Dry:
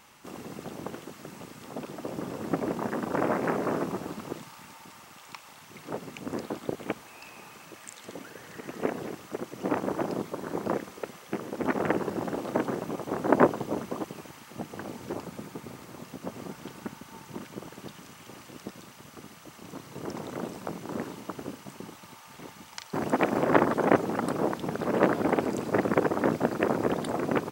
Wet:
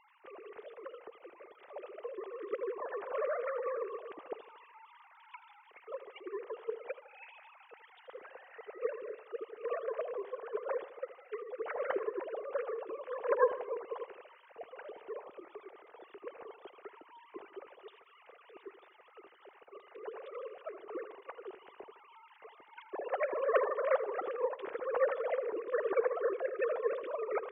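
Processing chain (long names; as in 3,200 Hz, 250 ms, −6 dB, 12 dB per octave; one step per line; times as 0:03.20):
three sine waves on the formant tracks
on a send: tape delay 79 ms, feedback 56%, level −13.5 dB, low-pass 2,900 Hz
on the sum: level −7.5 dB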